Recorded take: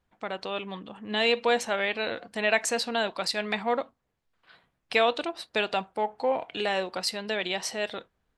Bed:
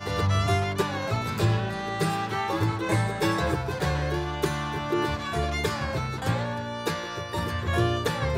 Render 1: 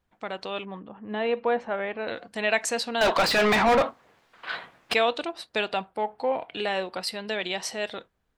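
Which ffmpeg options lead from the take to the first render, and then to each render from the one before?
-filter_complex "[0:a]asettb=1/sr,asplit=3[a][b][c];[a]atrim=end=0.654[d];[b]atrim=start=0.65:end=2.08,asetpts=PTS-STARTPTS,afade=t=in:d=0.004:c=qsin,afade=t=out:st=1.426:d=0.004:c=qsin,lowpass=1.5k[e];[c]atrim=start=2.076[f];[d][e]acrossfade=d=0.004:c1=hsin:c2=qsin[g];[g][f]acrossfade=d=0.004:c1=qsin:c2=hsin,asettb=1/sr,asplit=3[h][i][j];[h]atrim=end=3.014[k];[i]atrim=start=3.01:end=4.94,asetpts=PTS-STARTPTS,afade=t=in:d=0.004:c=qsin,afade=t=out:st=1.926:d=0.004:c=qsin,asplit=2[l][m];[m]highpass=f=720:p=1,volume=33dB,asoftclip=type=tanh:threshold=-12dB[n];[l][n]amix=inputs=2:normalize=0,lowpass=f=2.2k:p=1,volume=-6dB[o];[j]atrim=start=4.936[p];[k][o]acrossfade=d=0.004:c1=hsin:c2=qsin[q];[q][p]acrossfade=d=0.004:c1=qsin:c2=hsin,asettb=1/sr,asplit=3[r][s][t];[r]atrim=end=5.684[u];[s]atrim=start=5.68:end=7.29,asetpts=PTS-STARTPTS,afade=t=in:d=0.004:c=qsin,afade=t=out:st=1.606:d=0.004:c=qsin,equalizer=f=6.5k:t=o:w=0.46:g=-8.5[v];[t]atrim=start=7.286[w];[u][v]acrossfade=d=0.004:c1=hsin:c2=qsin[x];[x][w]acrossfade=d=0.004:c1=qsin:c2=hsin"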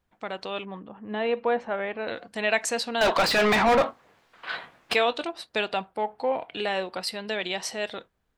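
-filter_complex "[0:a]asettb=1/sr,asplit=3[a][b][c];[a]atrim=end=3.764[d];[b]atrim=start=3.76:end=5.29,asetpts=PTS-STARTPTS,afade=t=in:d=0.004:c=qsin,afade=t=out:st=1.526:d=0.004:c=qsin,asplit=2[e][f];[f]adelay=20,volume=-13dB[g];[e][g]amix=inputs=2:normalize=0,atrim=end_sample=67473[h];[c]atrim=start=5.286[i];[d][h]acrossfade=d=0.004:c1=hsin:c2=qsin[j];[j][i]acrossfade=d=0.004:c1=qsin:c2=hsin"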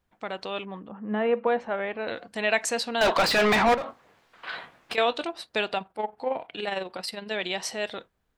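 -filter_complex "[0:a]asettb=1/sr,asplit=3[a][b][c];[a]atrim=end=0.914[d];[b]atrim=start=0.91:end=1.47,asetpts=PTS-STARTPTS,afade=t=in:d=0.004:c=qsin,afade=t=out:st=0.556:d=0.004:c=qsin,highpass=140,equalizer=f=200:t=q:w=4:g=8,equalizer=f=530:t=q:w=4:g=4,equalizer=f=1.3k:t=q:w=4:g=5,equalizer=f=2.5k:t=q:w=4:g=-3,lowpass=f=2.8k:w=0.5412,lowpass=f=2.8k:w=1.3066[e];[c]atrim=start=1.466[f];[d][e]acrossfade=d=0.004:c1=hsin:c2=qsin[g];[g][f]acrossfade=d=0.004:c1=qsin:c2=hsin,asettb=1/sr,asplit=3[h][i][j];[h]atrim=end=3.744[k];[i]atrim=start=3.74:end=4.98,asetpts=PTS-STARTPTS,afade=t=in:d=0.004:c=qsin,afade=t=out:st=1.236:d=0.004:c=qsin,acompressor=threshold=-30dB:ratio=5:attack=3.2:release=140:knee=1:detection=peak[l];[j]atrim=start=4.976[m];[k][l]acrossfade=d=0.004:c1=hsin:c2=qsin[n];[n][m]acrossfade=d=0.004:c1=qsin:c2=hsin,asplit=3[o][p][q];[o]afade=t=out:st=5.75:d=0.02[r];[p]tremolo=f=22:d=0.571,afade=t=in:st=5.75:d=0.02,afade=t=out:st=7.32:d=0.02[s];[q]afade=t=in:st=7.32:d=0.02[t];[r][s][t]amix=inputs=3:normalize=0"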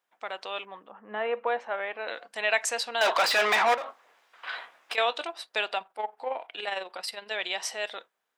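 -af "highpass=620,bandreject=f=4.3k:w=18"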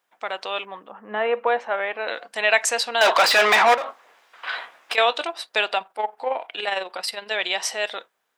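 -af "volume=7dB"

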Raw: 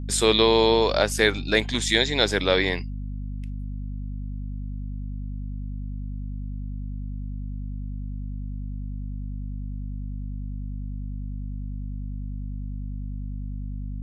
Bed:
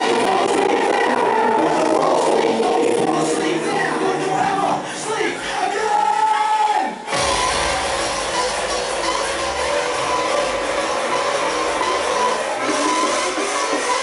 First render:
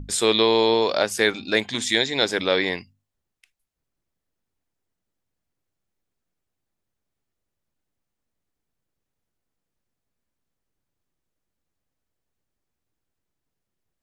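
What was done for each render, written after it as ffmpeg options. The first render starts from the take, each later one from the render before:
-af "bandreject=f=50:t=h:w=6,bandreject=f=100:t=h:w=6,bandreject=f=150:t=h:w=6,bandreject=f=200:t=h:w=6,bandreject=f=250:t=h:w=6"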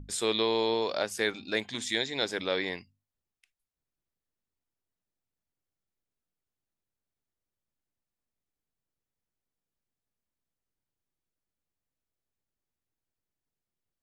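-af "volume=-9dB"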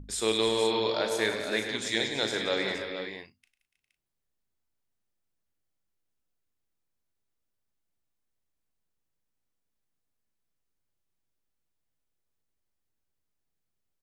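-filter_complex "[0:a]asplit=2[a][b];[b]adelay=36,volume=-9.5dB[c];[a][c]amix=inputs=2:normalize=0,aecho=1:1:99|175|289|318|406|470:0.299|0.251|0.158|0.237|0.188|0.376"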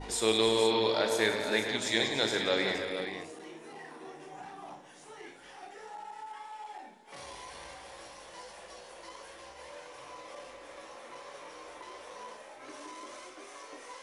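-filter_complex "[1:a]volume=-27.5dB[a];[0:a][a]amix=inputs=2:normalize=0"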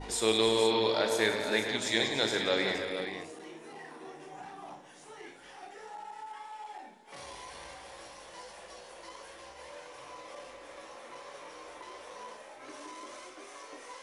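-af anull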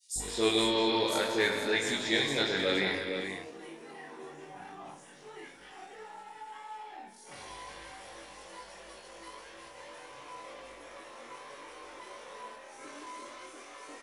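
-filter_complex "[0:a]asplit=2[a][b];[b]adelay=21,volume=-4.5dB[c];[a][c]amix=inputs=2:normalize=0,acrossover=split=690|5400[d][e][f];[d]adelay=160[g];[e]adelay=190[h];[g][h][f]amix=inputs=3:normalize=0"

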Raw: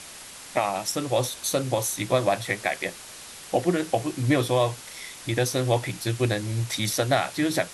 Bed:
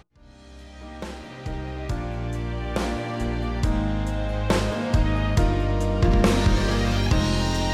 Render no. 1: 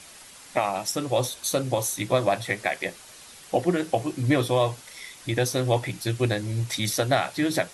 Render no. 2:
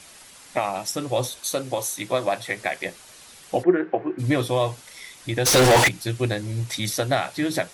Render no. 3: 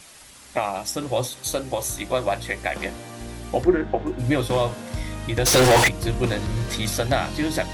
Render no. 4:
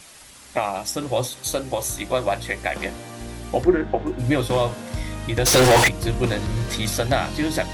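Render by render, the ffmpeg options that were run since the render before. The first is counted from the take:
-af "afftdn=nr=6:nf=-43"
-filter_complex "[0:a]asettb=1/sr,asplit=3[a][b][c];[a]atrim=end=1.404[d];[b]atrim=start=1.4:end=2.57,asetpts=PTS-STARTPTS,afade=t=in:d=0.004:c=qsin,afade=t=out:st=1.166:d=0.004:c=qsin,highpass=f=270:p=1[e];[c]atrim=start=2.566[f];[d][e]acrossfade=d=0.004:c1=hsin:c2=qsin[g];[g][f]acrossfade=d=0.004:c1=qsin:c2=hsin,asplit=3[h][i][j];[h]afade=t=out:st=3.62:d=0.02[k];[i]highpass=230,equalizer=f=370:t=q:w=4:g=9,equalizer=f=590:t=q:w=4:g=-3,equalizer=f=1.6k:t=q:w=4:g=6,lowpass=f=2.1k:w=0.5412,lowpass=f=2.1k:w=1.3066,afade=t=in:st=3.62:d=0.02,afade=t=out:st=4.18:d=0.02[l];[j]afade=t=in:st=4.18:d=0.02[m];[k][l][m]amix=inputs=3:normalize=0,asplit=3[n][o][p];[n]afade=t=out:st=5.45:d=0.02[q];[o]asplit=2[r][s];[s]highpass=f=720:p=1,volume=41dB,asoftclip=type=tanh:threshold=-8dB[t];[r][t]amix=inputs=2:normalize=0,lowpass=f=5.3k:p=1,volume=-6dB,afade=t=in:st=5.45:d=0.02,afade=t=out:st=5.87:d=0.02[u];[p]afade=t=in:st=5.87:d=0.02[v];[q][u][v]amix=inputs=3:normalize=0"
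-filter_complex "[1:a]volume=-9.5dB[a];[0:a][a]amix=inputs=2:normalize=0"
-af "volume=1dB"

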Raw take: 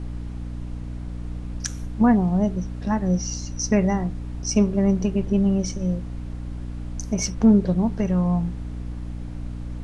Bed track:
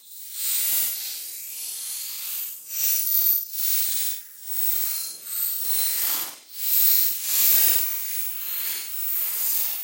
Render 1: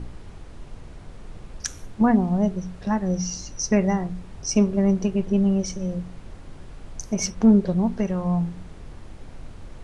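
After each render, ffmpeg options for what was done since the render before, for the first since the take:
-af "bandreject=f=60:t=h:w=4,bandreject=f=120:t=h:w=4,bandreject=f=180:t=h:w=4,bandreject=f=240:t=h:w=4,bandreject=f=300:t=h:w=4"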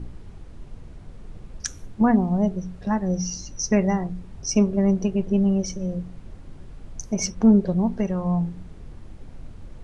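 -af "afftdn=nr=6:nf=-42"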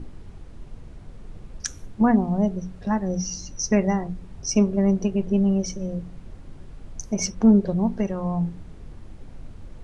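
-af "bandreject=f=60:t=h:w=6,bandreject=f=120:t=h:w=6,bandreject=f=180:t=h:w=6"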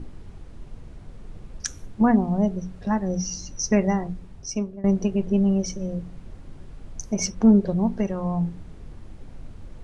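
-filter_complex "[0:a]asplit=2[a][b];[a]atrim=end=4.84,asetpts=PTS-STARTPTS,afade=t=out:st=4.09:d=0.75:silence=0.1[c];[b]atrim=start=4.84,asetpts=PTS-STARTPTS,afade=t=in:d=0.004:c=hsin:silence=0.1[d];[c][d]concat=n=2:v=0:a=1"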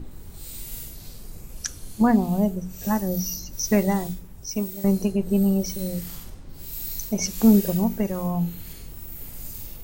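-filter_complex "[1:a]volume=-15.5dB[a];[0:a][a]amix=inputs=2:normalize=0"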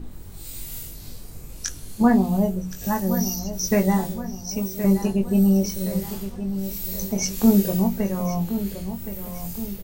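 -filter_complex "[0:a]asplit=2[a][b];[b]adelay=21,volume=-5dB[c];[a][c]amix=inputs=2:normalize=0,asplit=2[d][e];[e]adelay=1069,lowpass=f=4.1k:p=1,volume=-10.5dB,asplit=2[f][g];[g]adelay=1069,lowpass=f=4.1k:p=1,volume=0.49,asplit=2[h][i];[i]adelay=1069,lowpass=f=4.1k:p=1,volume=0.49,asplit=2[j][k];[k]adelay=1069,lowpass=f=4.1k:p=1,volume=0.49,asplit=2[l][m];[m]adelay=1069,lowpass=f=4.1k:p=1,volume=0.49[n];[f][h][j][l][n]amix=inputs=5:normalize=0[o];[d][o]amix=inputs=2:normalize=0"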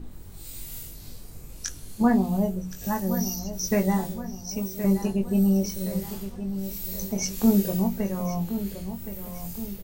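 -af "volume=-3.5dB"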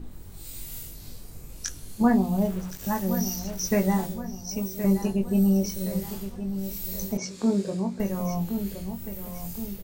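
-filter_complex "[0:a]asettb=1/sr,asplit=3[a][b][c];[a]atrim=end=2.384[d];[b]atrim=start=2.38:end=4.06,asetpts=PTS-STARTPTS,afade=t=in:d=0.004:c=qsin,afade=t=out:st=1.676:d=0.004:c=qsin,aeval=exprs='val(0)*gte(abs(val(0)),0.0126)':c=same[e];[c]atrim=start=4.056[f];[d][e]acrossfade=d=0.004:c1=hsin:c2=qsin[g];[g][f]acrossfade=d=0.004:c1=qsin:c2=hsin,asettb=1/sr,asplit=3[h][i][j];[h]atrim=end=7.174[k];[i]atrim=start=7.17:end=8,asetpts=PTS-STARTPTS,afade=t=in:d=0.004:c=qsin,afade=t=out:st=0.826:d=0.004:c=qsin,highpass=160,equalizer=f=210:t=q:w=4:g=-4,equalizer=f=760:t=q:w=4:g=-6,equalizer=f=1.9k:t=q:w=4:g=-4,equalizer=f=2.9k:t=q:w=4:g=-8,equalizer=f=6k:t=q:w=4:g=-8,lowpass=f=7.3k:w=0.5412,lowpass=f=7.3k:w=1.3066[l];[j]atrim=start=7.996[m];[k][l]acrossfade=d=0.004:c1=hsin:c2=qsin[n];[n][m]acrossfade=d=0.004:c1=qsin:c2=hsin"

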